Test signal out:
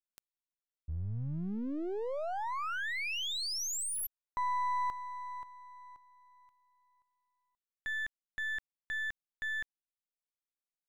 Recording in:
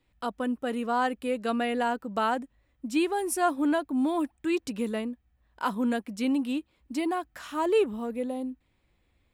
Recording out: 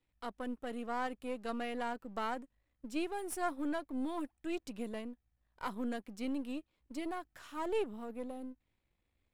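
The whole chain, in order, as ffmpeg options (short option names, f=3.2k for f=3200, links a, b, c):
-af "aeval=exprs='if(lt(val(0),0),0.447*val(0),val(0))':c=same,volume=-8.5dB"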